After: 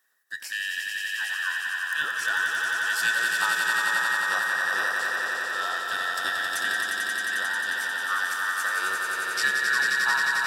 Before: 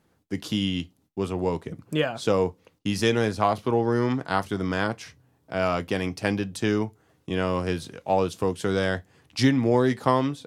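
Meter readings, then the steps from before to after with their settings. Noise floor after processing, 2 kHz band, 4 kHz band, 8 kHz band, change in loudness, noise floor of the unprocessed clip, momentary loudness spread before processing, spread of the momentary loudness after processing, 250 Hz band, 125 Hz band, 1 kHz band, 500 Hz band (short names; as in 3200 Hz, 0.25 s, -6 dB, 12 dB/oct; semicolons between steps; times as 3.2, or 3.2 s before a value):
-33 dBFS, +12.5 dB, +4.0 dB, +9.0 dB, +1.0 dB, -67 dBFS, 12 LU, 6 LU, -25.5 dB, under -25 dB, -1.0 dB, -18.0 dB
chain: band inversion scrambler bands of 2000 Hz; RIAA curve recording; swelling echo 89 ms, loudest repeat 5, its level -5 dB; gain -8.5 dB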